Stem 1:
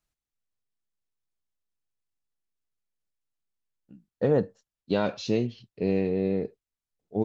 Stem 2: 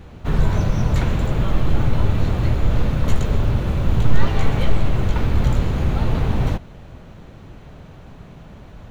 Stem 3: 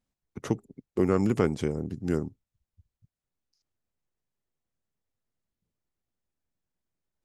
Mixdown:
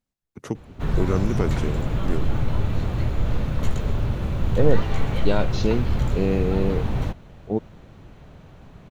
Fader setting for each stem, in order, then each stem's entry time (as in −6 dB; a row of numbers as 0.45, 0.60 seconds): +2.5, −5.0, −1.0 decibels; 0.35, 0.55, 0.00 seconds